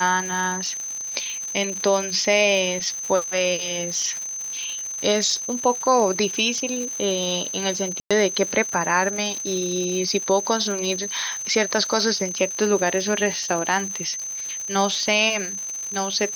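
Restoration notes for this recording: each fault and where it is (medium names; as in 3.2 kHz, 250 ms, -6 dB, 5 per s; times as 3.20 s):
crackle 250 per s -29 dBFS
whine 6.2 kHz -28 dBFS
8.00–8.11 s: dropout 106 ms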